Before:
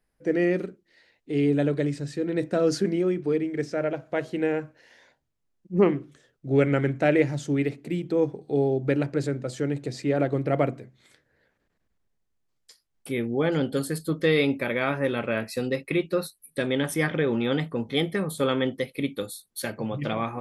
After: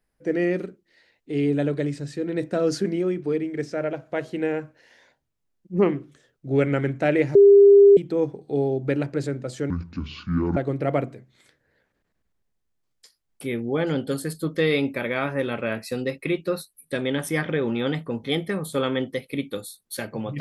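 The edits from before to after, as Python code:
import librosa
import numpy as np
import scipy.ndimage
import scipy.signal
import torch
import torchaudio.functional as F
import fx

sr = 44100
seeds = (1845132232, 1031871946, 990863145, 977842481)

y = fx.edit(x, sr, fx.bleep(start_s=7.35, length_s=0.62, hz=401.0, db=-8.0),
    fx.speed_span(start_s=9.7, length_s=0.52, speed=0.6), tone=tone)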